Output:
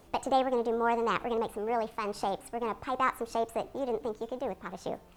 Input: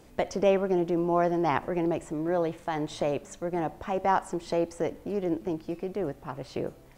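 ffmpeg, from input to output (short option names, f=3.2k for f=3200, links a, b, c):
-af "asetrate=59535,aresample=44100,volume=-3dB"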